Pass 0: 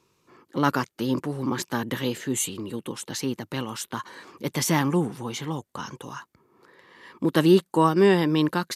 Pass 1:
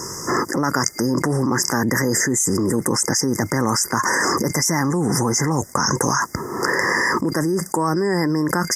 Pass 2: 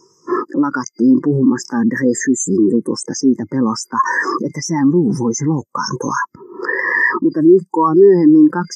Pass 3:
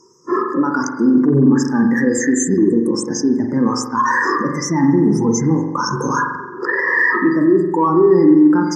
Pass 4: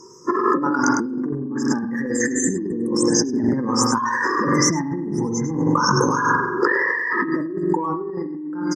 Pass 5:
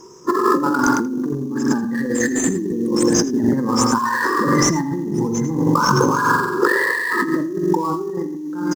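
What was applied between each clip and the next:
FFT band-reject 2100–4800 Hz; bell 5700 Hz +11 dB 1.9 oct; fast leveller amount 100%; gain -6.5 dB
low shelf 120 Hz -10 dB; spectral expander 2.5:1
limiter -7 dBFS, peak gain reduction 6 dB; spring tank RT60 1.1 s, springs 43 ms, chirp 50 ms, DRR 2.5 dB; added harmonics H 5 -40 dB, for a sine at -0.5 dBFS; gain -1 dB
echo 0.103 s -8.5 dB; negative-ratio compressor -22 dBFS, ratio -1
in parallel at -9.5 dB: sample-rate reducer 6300 Hz, jitter 20%; on the sum: echo 81 ms -18.5 dB

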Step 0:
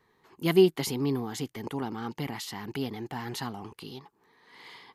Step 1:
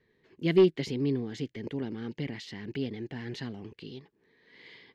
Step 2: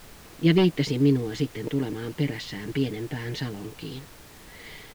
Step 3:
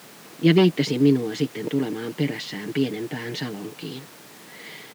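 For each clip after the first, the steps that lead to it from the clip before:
band shelf 1000 Hz -14 dB 1.1 oct; overloaded stage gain 13.5 dB; air absorption 160 m
comb 6.6 ms, depth 66%; added noise pink -53 dBFS; gain +5.5 dB
HPF 150 Hz 24 dB/oct; gain +3.5 dB

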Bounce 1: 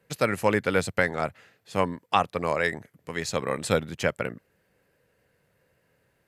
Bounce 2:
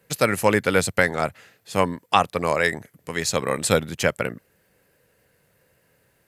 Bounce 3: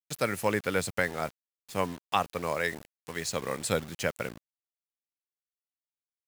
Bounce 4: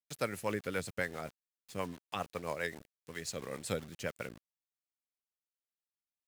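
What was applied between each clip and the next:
high shelf 5900 Hz +9 dB; gain +4 dB
requantised 6-bit, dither none; gain -9 dB
rotary speaker horn 7.5 Hz; gain -5.5 dB

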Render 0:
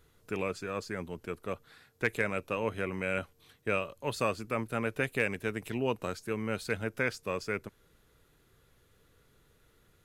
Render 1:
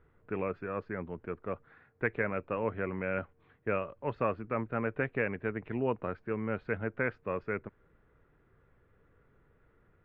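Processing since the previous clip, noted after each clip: LPF 2000 Hz 24 dB/oct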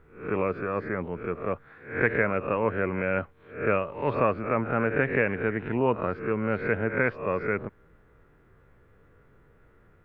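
spectral swells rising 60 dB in 0.44 s; gain +6 dB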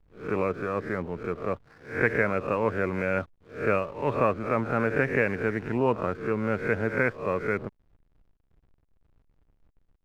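backlash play -46 dBFS

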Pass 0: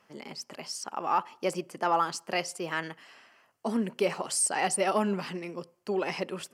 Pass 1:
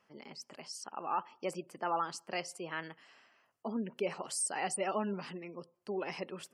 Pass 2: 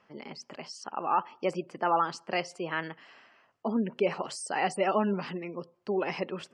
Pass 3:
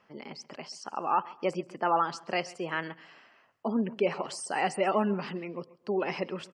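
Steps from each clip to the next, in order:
spectral gate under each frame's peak -30 dB strong; gain -7.5 dB
air absorption 120 m; gain +8 dB
feedback echo 0.134 s, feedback 32%, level -20.5 dB

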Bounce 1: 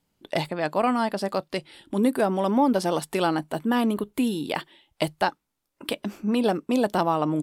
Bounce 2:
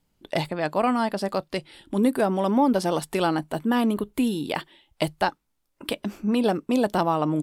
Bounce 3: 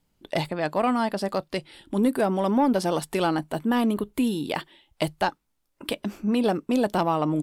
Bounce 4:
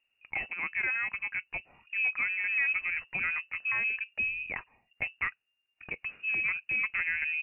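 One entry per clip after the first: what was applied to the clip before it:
low shelf 68 Hz +11 dB
soft clip -11 dBFS, distortion -25 dB
inverted band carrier 2800 Hz; gain -8 dB

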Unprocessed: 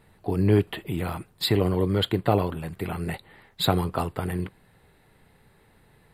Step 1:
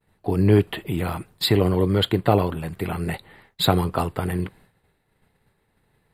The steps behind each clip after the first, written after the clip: expander -49 dBFS; gain +3.5 dB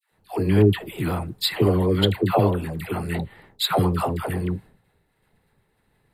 dispersion lows, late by 0.115 s, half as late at 700 Hz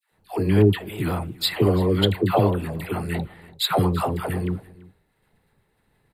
echo 0.336 s -21.5 dB

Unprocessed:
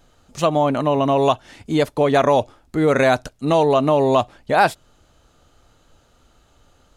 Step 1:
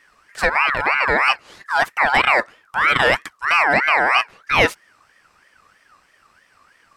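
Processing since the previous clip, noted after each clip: ring modulator with a swept carrier 1500 Hz, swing 25%, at 3.1 Hz; gain +2.5 dB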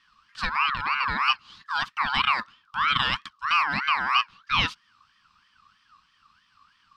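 EQ curve 220 Hz 0 dB, 440 Hz -20 dB, 650 Hz -21 dB, 1100 Hz +4 dB, 2000 Hz -9 dB, 3100 Hz +6 dB, 4800 Hz +3 dB, 7000 Hz -9 dB, 12000 Hz -19 dB; gain -5.5 dB

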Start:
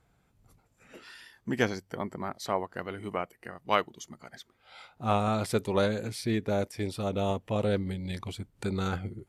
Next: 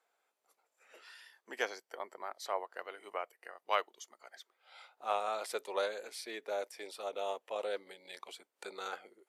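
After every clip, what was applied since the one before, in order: HPF 470 Hz 24 dB/oct; gain -5.5 dB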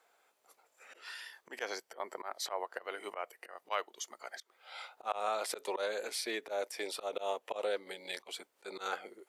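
auto swell 0.146 s; compressor 2:1, threshold -44 dBFS, peak gain reduction 7.5 dB; gain +9 dB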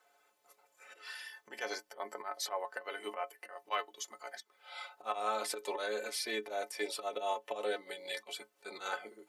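metallic resonator 64 Hz, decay 0.27 s, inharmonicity 0.03; gain +7.5 dB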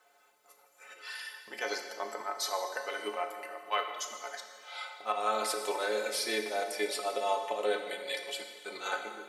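plate-style reverb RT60 1.8 s, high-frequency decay 1×, DRR 4.5 dB; gain +3.5 dB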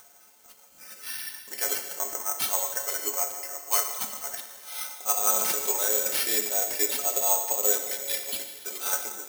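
careless resampling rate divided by 6×, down none, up zero stuff; upward compressor, threshold -44 dBFS; gain -1 dB

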